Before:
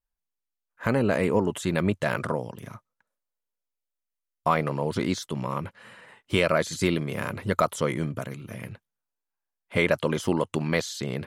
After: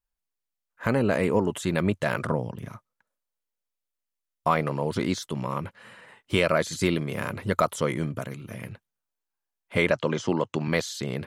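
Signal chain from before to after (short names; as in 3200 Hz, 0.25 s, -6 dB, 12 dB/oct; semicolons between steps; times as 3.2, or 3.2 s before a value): 2.27–2.68 tone controls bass +6 dB, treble -6 dB; 9.91–10.68 elliptic band-pass 110–6700 Hz, stop band 40 dB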